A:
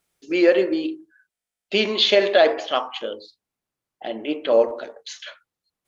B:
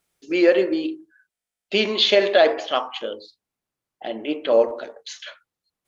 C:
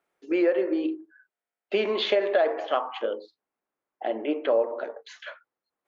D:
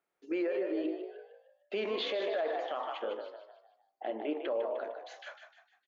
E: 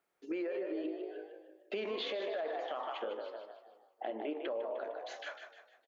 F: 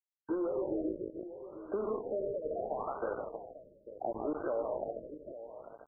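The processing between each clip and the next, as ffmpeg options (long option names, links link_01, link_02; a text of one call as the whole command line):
ffmpeg -i in.wav -af anull out.wav
ffmpeg -i in.wav -filter_complex "[0:a]acrossover=split=260 2100:gain=0.1 1 0.126[link_01][link_02][link_03];[link_01][link_02][link_03]amix=inputs=3:normalize=0,acompressor=threshold=-25dB:ratio=3,volume=3dB" out.wav
ffmpeg -i in.wav -filter_complex "[0:a]asplit=6[link_01][link_02][link_03][link_04][link_05][link_06];[link_02]adelay=152,afreqshift=53,volume=-8.5dB[link_07];[link_03]adelay=304,afreqshift=106,volume=-16dB[link_08];[link_04]adelay=456,afreqshift=159,volume=-23.6dB[link_09];[link_05]adelay=608,afreqshift=212,volume=-31.1dB[link_10];[link_06]adelay=760,afreqshift=265,volume=-38.6dB[link_11];[link_01][link_07][link_08][link_09][link_10][link_11]amix=inputs=6:normalize=0,alimiter=limit=-18.5dB:level=0:latency=1:release=23,volume=-7dB" out.wav
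ffmpeg -i in.wav -filter_complex "[0:a]asplit=2[link_01][link_02];[link_02]adelay=321,lowpass=frequency=2600:poles=1,volume=-22dB,asplit=2[link_03][link_04];[link_04]adelay=321,lowpass=frequency=2600:poles=1,volume=0.36,asplit=2[link_05][link_06];[link_06]adelay=321,lowpass=frequency=2600:poles=1,volume=0.36[link_07];[link_01][link_03][link_05][link_07]amix=inputs=4:normalize=0,acompressor=threshold=-40dB:ratio=3,volume=3dB" out.wav
ffmpeg -i in.wav -af "aeval=exprs='val(0)*gte(abs(val(0)),0.0106)':channel_layout=same,aecho=1:1:321|845:0.119|0.237,afftfilt=real='re*lt(b*sr/1024,600*pow(1600/600,0.5+0.5*sin(2*PI*0.73*pts/sr)))':imag='im*lt(b*sr/1024,600*pow(1600/600,0.5+0.5*sin(2*PI*0.73*pts/sr)))':win_size=1024:overlap=0.75,volume=4dB" out.wav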